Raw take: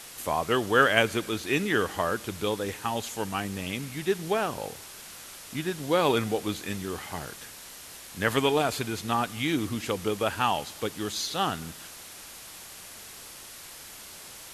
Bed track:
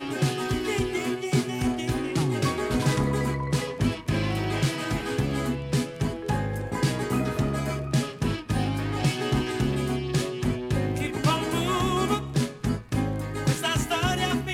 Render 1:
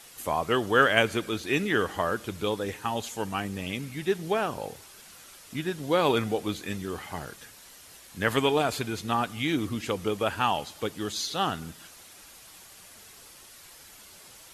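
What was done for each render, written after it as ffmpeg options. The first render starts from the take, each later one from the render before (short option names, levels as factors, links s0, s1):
-af "afftdn=nr=7:nf=-45"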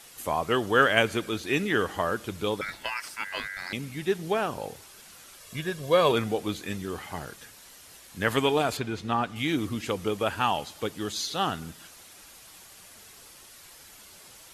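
-filter_complex "[0:a]asettb=1/sr,asplit=3[s0][s1][s2];[s0]atrim=end=2.614[s3];[s1]atrim=start=2.61:end=3.73,asetpts=PTS-STARTPTS,afade=t=in:d=0.004:c=qsin,afade=t=out:st=1.116:d=0.004:c=qsin,aeval=exprs='val(0)*sin(2*PI*1800*n/s)':c=same[s4];[s2]atrim=start=3.726[s5];[s3][s4]acrossfade=d=0.004:c1=hsin:c2=qsin[s6];[s6][s5]acrossfade=d=0.004:c1=qsin:c2=hsin,asettb=1/sr,asplit=3[s7][s8][s9];[s7]atrim=end=5.404[s10];[s8]atrim=start=5.4:end=6.12,asetpts=PTS-STARTPTS,afade=t=in:d=0.004:c=qsin,afade=t=out:st=0.716:d=0.004:c=qsin,aecho=1:1:1.8:0.65,atrim=end_sample=31752[s11];[s9]atrim=start=6.116[s12];[s10][s11]acrossfade=d=0.004:c1=hsin:c2=qsin[s13];[s13][s12]acrossfade=d=0.004:c1=qsin:c2=hsin,asettb=1/sr,asplit=3[s14][s15][s16];[s14]atrim=end=8.774[s17];[s15]atrim=start=8.77:end=9.36,asetpts=PTS-STARTPTS,afade=t=in:d=0.004:c=qsin,afade=t=out:st=0.586:d=0.004:c=qsin,aemphasis=mode=reproduction:type=50fm[s18];[s16]atrim=start=9.356[s19];[s17][s18]acrossfade=d=0.004:c1=hsin:c2=qsin[s20];[s20][s19]acrossfade=d=0.004:c1=qsin:c2=hsin"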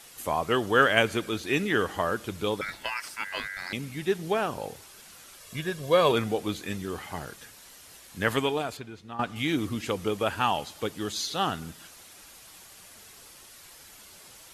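-filter_complex "[0:a]asplit=2[s0][s1];[s0]atrim=end=9.19,asetpts=PTS-STARTPTS,afade=t=out:st=8.28:d=0.91:c=qua:silence=0.223872[s2];[s1]atrim=start=9.19,asetpts=PTS-STARTPTS,afade=t=in:d=0.004:c=hsin:silence=0.223872[s3];[s2][s3]concat=n=2:v=0:a=1"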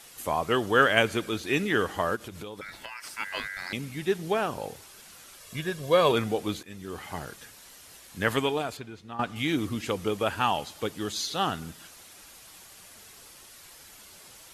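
-filter_complex "[0:a]asplit=3[s0][s1][s2];[s0]afade=t=out:st=2.15:d=0.02[s3];[s1]acompressor=threshold=0.0158:ratio=6:attack=3.2:release=140:knee=1:detection=peak,afade=t=in:st=2.15:d=0.02,afade=t=out:st=3.04:d=0.02[s4];[s2]afade=t=in:st=3.04:d=0.02[s5];[s3][s4][s5]amix=inputs=3:normalize=0,asplit=2[s6][s7];[s6]atrim=end=6.63,asetpts=PTS-STARTPTS,afade=t=out:st=6.626:d=0.004:c=hsin:silence=0.141254[s8];[s7]atrim=start=6.63,asetpts=PTS-STARTPTS,afade=t=in:d=0.46:silence=0.141254[s9];[s8][s9]concat=n=2:v=0:a=1"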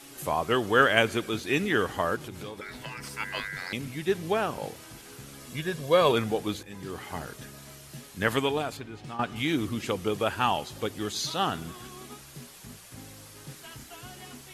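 -filter_complex "[1:a]volume=0.0891[s0];[0:a][s0]amix=inputs=2:normalize=0"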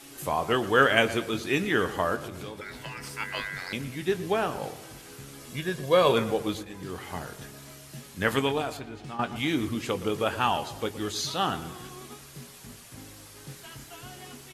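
-filter_complex "[0:a]asplit=2[s0][s1];[s1]adelay=22,volume=0.251[s2];[s0][s2]amix=inputs=2:normalize=0,asplit=2[s3][s4];[s4]adelay=118,lowpass=f=2000:p=1,volume=0.211,asplit=2[s5][s6];[s6]adelay=118,lowpass=f=2000:p=1,volume=0.49,asplit=2[s7][s8];[s8]adelay=118,lowpass=f=2000:p=1,volume=0.49,asplit=2[s9][s10];[s10]adelay=118,lowpass=f=2000:p=1,volume=0.49,asplit=2[s11][s12];[s12]adelay=118,lowpass=f=2000:p=1,volume=0.49[s13];[s3][s5][s7][s9][s11][s13]amix=inputs=6:normalize=0"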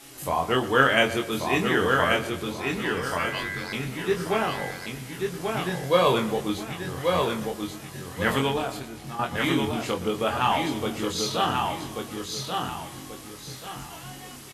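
-filter_complex "[0:a]asplit=2[s0][s1];[s1]adelay=23,volume=0.708[s2];[s0][s2]amix=inputs=2:normalize=0,aecho=1:1:1135|2270|3405|4540:0.631|0.202|0.0646|0.0207"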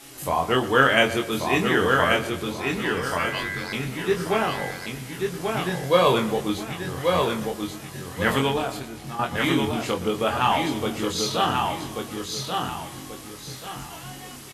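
-af "volume=1.26,alimiter=limit=0.794:level=0:latency=1"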